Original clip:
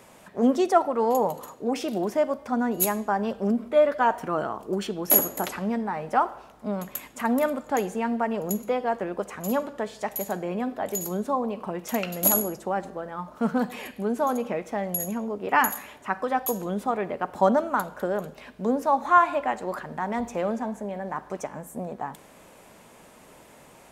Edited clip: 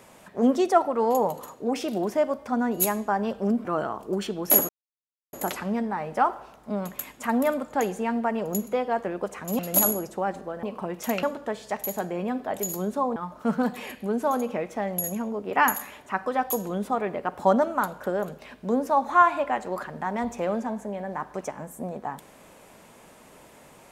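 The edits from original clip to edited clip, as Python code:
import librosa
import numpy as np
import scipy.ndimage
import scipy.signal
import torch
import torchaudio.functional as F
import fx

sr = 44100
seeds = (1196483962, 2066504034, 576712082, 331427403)

y = fx.edit(x, sr, fx.cut(start_s=3.65, length_s=0.6),
    fx.insert_silence(at_s=5.29, length_s=0.64),
    fx.swap(start_s=9.55, length_s=1.93, other_s=12.08, other_length_s=1.04), tone=tone)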